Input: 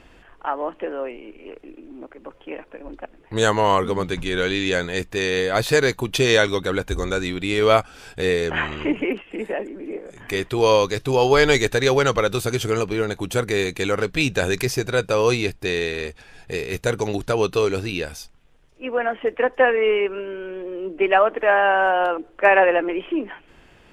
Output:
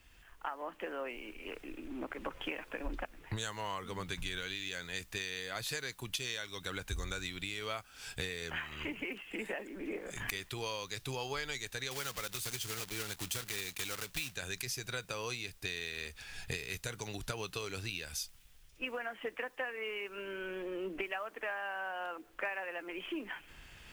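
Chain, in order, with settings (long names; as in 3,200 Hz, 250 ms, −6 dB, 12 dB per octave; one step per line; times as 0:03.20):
0:11.91–0:14.36: one scale factor per block 3 bits
camcorder AGC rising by 7.8 dB per second
guitar amp tone stack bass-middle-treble 5-5-5
downward compressor 12 to 1, threshold −42 dBFS, peak gain reduction 18.5 dB
bit-depth reduction 12 bits, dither triangular
multiband upward and downward expander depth 40%
level +6.5 dB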